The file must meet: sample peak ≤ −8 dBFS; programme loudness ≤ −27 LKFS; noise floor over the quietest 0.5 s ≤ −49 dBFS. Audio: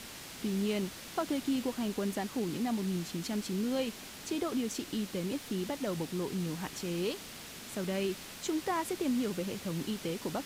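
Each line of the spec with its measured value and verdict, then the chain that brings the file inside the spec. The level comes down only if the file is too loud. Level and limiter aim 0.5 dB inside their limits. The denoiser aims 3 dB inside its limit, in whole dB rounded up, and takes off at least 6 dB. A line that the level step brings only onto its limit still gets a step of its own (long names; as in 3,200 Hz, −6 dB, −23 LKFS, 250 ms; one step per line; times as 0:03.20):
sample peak −20.5 dBFS: in spec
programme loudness −35.0 LKFS: in spec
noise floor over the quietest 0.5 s −47 dBFS: out of spec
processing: broadband denoise 6 dB, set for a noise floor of −47 dBFS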